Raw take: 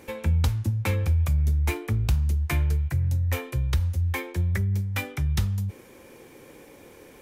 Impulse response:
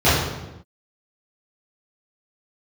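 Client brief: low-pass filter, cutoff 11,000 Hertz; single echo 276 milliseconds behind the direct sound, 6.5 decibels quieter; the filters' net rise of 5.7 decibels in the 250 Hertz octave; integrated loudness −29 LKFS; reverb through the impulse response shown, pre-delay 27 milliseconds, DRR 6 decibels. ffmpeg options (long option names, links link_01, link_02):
-filter_complex "[0:a]lowpass=11000,equalizer=frequency=250:width_type=o:gain=8.5,aecho=1:1:276:0.473,asplit=2[link_01][link_02];[1:a]atrim=start_sample=2205,adelay=27[link_03];[link_02][link_03]afir=irnorm=-1:irlink=0,volume=-30dB[link_04];[link_01][link_04]amix=inputs=2:normalize=0,volume=-12.5dB"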